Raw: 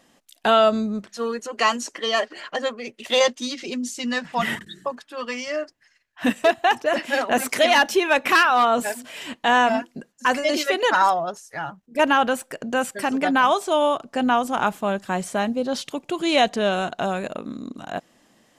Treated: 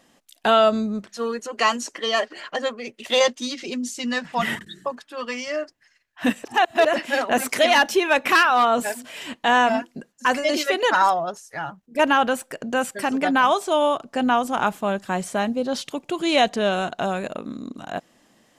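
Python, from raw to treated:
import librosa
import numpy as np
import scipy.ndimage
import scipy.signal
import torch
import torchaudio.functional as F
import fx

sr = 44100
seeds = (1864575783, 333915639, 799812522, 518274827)

y = fx.edit(x, sr, fx.reverse_span(start_s=6.44, length_s=0.41), tone=tone)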